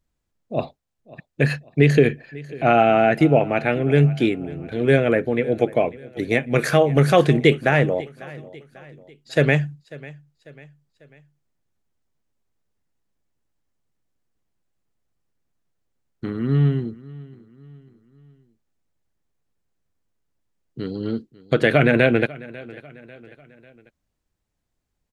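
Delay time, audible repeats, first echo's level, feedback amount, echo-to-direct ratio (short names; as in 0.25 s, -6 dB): 0.545 s, 3, -20.5 dB, 46%, -19.5 dB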